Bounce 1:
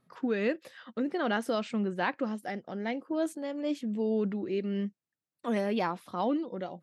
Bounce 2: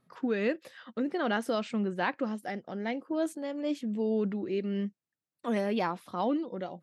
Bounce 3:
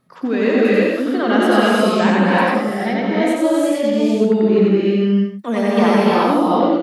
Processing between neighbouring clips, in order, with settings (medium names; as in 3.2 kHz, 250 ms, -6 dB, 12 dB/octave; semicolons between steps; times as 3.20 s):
no audible change
on a send: loudspeakers at several distances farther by 31 m -1 dB, 56 m -8 dB; on the sum: gated-style reverb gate 380 ms rising, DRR -4.5 dB; trim +8 dB